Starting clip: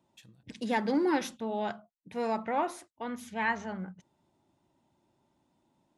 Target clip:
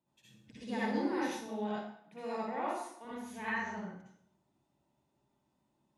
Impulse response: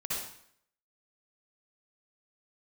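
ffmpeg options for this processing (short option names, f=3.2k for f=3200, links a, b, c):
-filter_complex "[0:a]asettb=1/sr,asplit=3[a][b][c];[a]atrim=end=1.704[d];[b]atrim=start=1.7:end=3.05,asetpts=PTS-STARTPTS,afade=t=in:d=0.004:c=qsin,afade=t=out:st=1.346:d=0.004:c=qsin,highpass=f=160:w=0.5412,highpass=f=160:w=1.3066[e];[c]atrim=start=3.046[f];[d][e]acrossfade=d=0.004:c1=hsin:c2=qsin[g];[g][f]acrossfade=d=0.004:c1=qsin:c2=hsin[h];[1:a]atrim=start_sample=2205[i];[h][i]afir=irnorm=-1:irlink=0,volume=-9dB"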